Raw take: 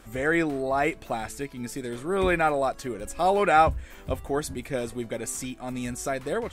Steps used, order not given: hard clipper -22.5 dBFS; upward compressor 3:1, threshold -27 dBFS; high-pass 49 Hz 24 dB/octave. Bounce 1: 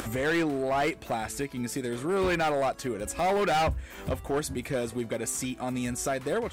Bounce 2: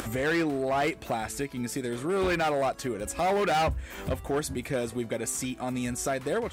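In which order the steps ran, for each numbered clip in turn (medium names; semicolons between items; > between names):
high-pass > upward compressor > hard clipper; hard clipper > high-pass > upward compressor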